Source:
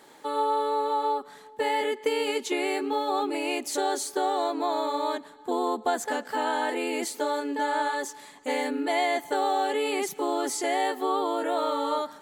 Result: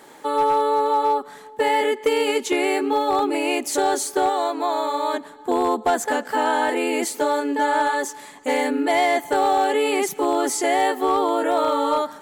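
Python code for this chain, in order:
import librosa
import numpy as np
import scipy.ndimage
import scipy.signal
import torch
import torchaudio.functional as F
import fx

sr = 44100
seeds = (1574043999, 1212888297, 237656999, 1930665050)

y = fx.low_shelf(x, sr, hz=500.0, db=-7.0, at=(4.29, 5.14))
y = np.clip(y, -10.0 ** (-19.0 / 20.0), 10.0 ** (-19.0 / 20.0))
y = fx.peak_eq(y, sr, hz=4100.0, db=-4.0, octaves=0.77)
y = y * 10.0 ** (7.0 / 20.0)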